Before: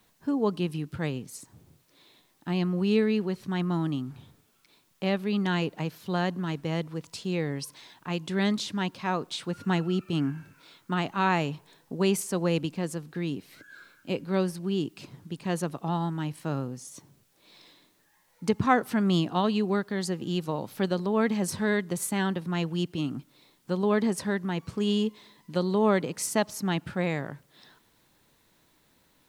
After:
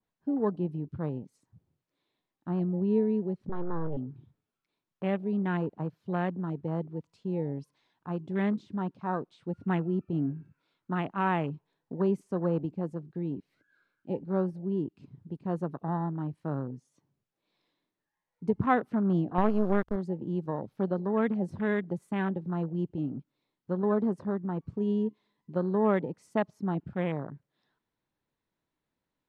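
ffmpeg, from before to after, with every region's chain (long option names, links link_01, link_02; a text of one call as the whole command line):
ffmpeg -i in.wav -filter_complex "[0:a]asettb=1/sr,asplit=3[link_01][link_02][link_03];[link_01]atrim=end=3.494[link_04];[link_02]atrim=start=3.49:end=3.97,asetpts=PTS-STARTPTS,afade=type=in:duration=0.004:curve=qsin,afade=type=out:start_time=0.476:duration=0.004:curve=qsin,aeval=exprs='abs(val(0))':channel_layout=same,aemphasis=mode=reproduction:type=75fm[link_05];[link_03]atrim=start=3.966[link_06];[link_04][link_05]acrossfade=duration=0.004:curve1=hsin:curve2=qsin[link_07];[link_07][link_06]acrossfade=duration=0.004:curve1=qsin:curve2=hsin,asettb=1/sr,asplit=3[link_08][link_09][link_10];[link_08]atrim=end=19.384[link_11];[link_09]atrim=start=19.38:end=19.96,asetpts=PTS-STARTPTS,afade=type=in:duration=0.004:curve=qsin,afade=type=out:start_time=0.576:duration=0.004:curve=qsin,acontrast=29,acrusher=bits=3:dc=4:mix=0:aa=0.000001[link_12];[link_10]atrim=start=19.956[link_13];[link_11][link_12]acrossfade=duration=0.004:curve1=hsin:curve2=qsin[link_14];[link_14][link_13]acrossfade=duration=0.004:curve1=qsin:curve2=hsin,aemphasis=mode=reproduction:type=75kf,afwtdn=0.0158,adynamicequalizer=threshold=0.00501:dfrequency=1800:dqfactor=0.7:tfrequency=1800:tqfactor=0.7:attack=5:release=100:ratio=0.375:range=1.5:mode=cutabove:tftype=highshelf,volume=-2dB" out.wav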